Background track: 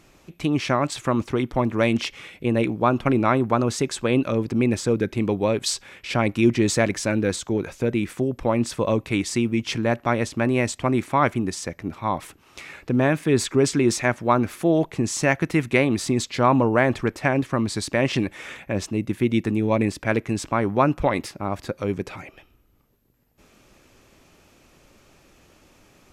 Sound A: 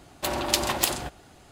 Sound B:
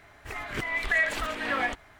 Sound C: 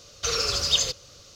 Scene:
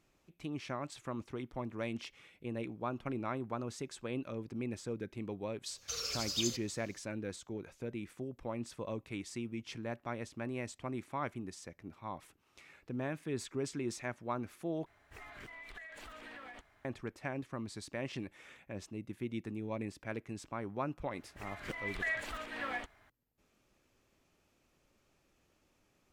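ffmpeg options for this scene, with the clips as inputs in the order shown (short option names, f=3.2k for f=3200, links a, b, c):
-filter_complex "[2:a]asplit=2[a][b];[0:a]volume=-18.5dB[c];[3:a]aemphasis=mode=production:type=50kf[d];[a]acompressor=threshold=-38dB:ratio=10:attack=33:release=63:knee=1:detection=peak[e];[c]asplit=2[f][g];[f]atrim=end=14.864[h];[e]atrim=end=1.99,asetpts=PTS-STARTPTS,volume=-13.5dB[i];[g]atrim=start=16.846[j];[d]atrim=end=1.35,asetpts=PTS-STARTPTS,volume=-18dB,afade=t=in:d=0.004:c=hsin,afade=t=out:st=1.346:d=0.004:c=hsin,adelay=249165S[k];[b]atrim=end=1.99,asetpts=PTS-STARTPTS,volume=-11dB,afade=t=in:d=0.004:c=hsin,afade=t=out:st=1.986:d=0.004:c=hsin,adelay=21110[l];[h][i]acrossfade=d=0.004:c1=hsin:c2=hsin[m];[m][j]acrossfade=d=0.004:c1=hsin:c2=hsin[n];[n][k][l]amix=inputs=3:normalize=0"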